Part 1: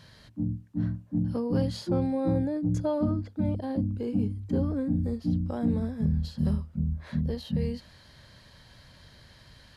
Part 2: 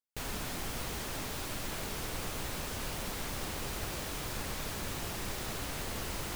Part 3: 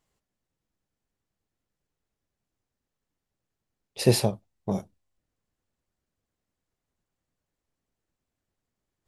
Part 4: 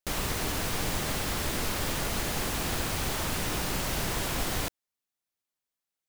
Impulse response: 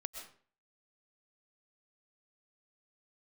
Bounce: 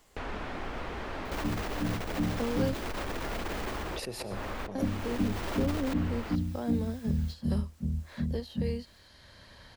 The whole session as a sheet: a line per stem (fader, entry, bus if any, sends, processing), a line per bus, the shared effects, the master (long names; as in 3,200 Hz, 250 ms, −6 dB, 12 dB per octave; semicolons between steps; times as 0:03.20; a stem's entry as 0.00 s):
+2.5 dB, 1.05 s, muted 0:02.74–0:04.75, no bus, no send, expander for the loud parts 1.5 to 1, over −42 dBFS
−4.0 dB, 0.00 s, bus A, send −9.5 dB, low-pass filter 2,000 Hz 12 dB per octave
0.0 dB, 0.00 s, bus A, send −21.5 dB, automatic gain control gain up to 13.5 dB
−8.0 dB, 1.25 s, bus A, no send, each half-wave held at its own peak; parametric band 12,000 Hz −9 dB 2 octaves; envelope flattener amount 50%; automatic ducking −15 dB, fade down 0.30 s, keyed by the third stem
bus A: 0.0 dB, compressor whose output falls as the input rises −32 dBFS, ratio −0.5; brickwall limiter −28.5 dBFS, peak gain reduction 9 dB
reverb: on, RT60 0.45 s, pre-delay 85 ms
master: parametric band 140 Hz −8.5 dB 0.96 octaves; multiband upward and downward compressor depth 40%